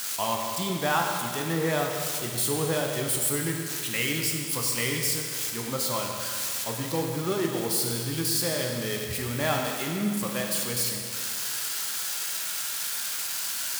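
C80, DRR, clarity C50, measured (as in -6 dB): 3.5 dB, 1.0 dB, 2.5 dB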